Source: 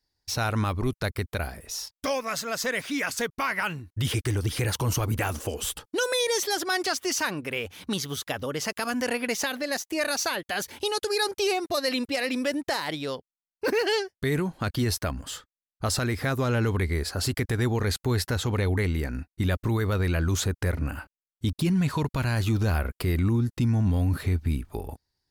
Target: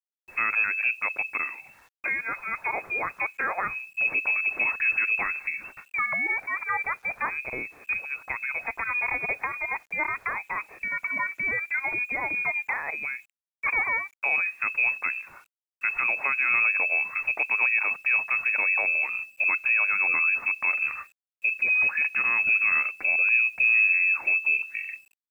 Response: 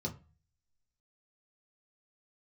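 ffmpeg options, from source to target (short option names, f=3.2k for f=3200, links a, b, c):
-filter_complex "[0:a]asplit=2[a][b];[1:a]atrim=start_sample=2205,afade=t=out:st=0.4:d=0.01,atrim=end_sample=18081,lowpass=6k[c];[b][c]afir=irnorm=-1:irlink=0,volume=-21.5dB[d];[a][d]amix=inputs=2:normalize=0,lowpass=f=2.3k:t=q:w=0.5098,lowpass=f=2.3k:t=q:w=0.6013,lowpass=f=2.3k:t=q:w=0.9,lowpass=f=2.3k:t=q:w=2.563,afreqshift=-2700,acrusher=bits=9:mix=0:aa=0.000001"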